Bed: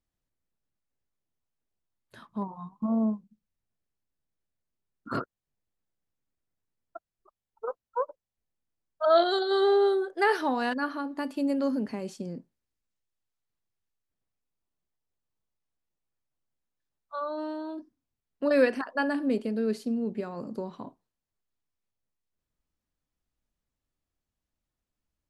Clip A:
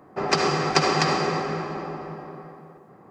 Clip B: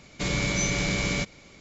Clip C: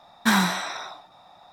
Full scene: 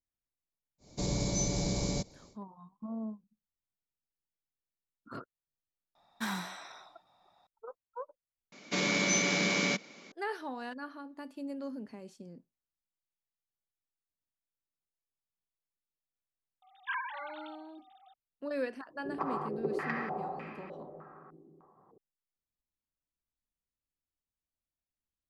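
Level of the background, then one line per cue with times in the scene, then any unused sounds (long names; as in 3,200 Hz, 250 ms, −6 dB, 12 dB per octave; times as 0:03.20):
bed −12.5 dB
0:00.78: mix in B −4 dB, fades 0.10 s + flat-topped bell 2,000 Hz −15.5 dB
0:05.95: mix in C −16 dB
0:08.52: overwrite with B −0.5 dB + elliptic band-pass filter 200–6,300 Hz
0:16.62: mix in C −16.5 dB + three sine waves on the formant tracks
0:18.88: mix in A −18 dB + low-pass on a step sequencer 3.3 Hz 330–2,500 Hz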